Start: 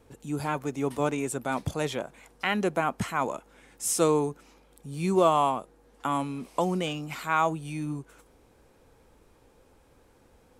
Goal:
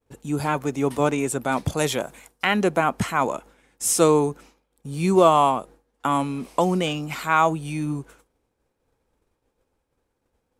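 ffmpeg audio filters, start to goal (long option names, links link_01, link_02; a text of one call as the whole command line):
ffmpeg -i in.wav -filter_complex "[0:a]agate=range=-33dB:threshold=-46dB:ratio=3:detection=peak,asettb=1/sr,asplit=3[link_01][link_02][link_03];[link_01]atrim=end=1.774[link_04];[link_02]atrim=start=1.77:end=2.45,asetpts=PTS-STARTPTS,afade=type=in:duration=0.004:curve=qsin,afade=type=out:start_time=0.676:duration=0.004:curve=qsin,highshelf=frequency=6600:gain=12[link_05];[link_03]atrim=start=2.446[link_06];[link_04][link_05]acrossfade=duration=0.004:curve1=hsin:curve2=qsin[link_07];[link_07][link_06]acrossfade=duration=0.004:curve1=qsin:curve2=hsin,volume=6dB" out.wav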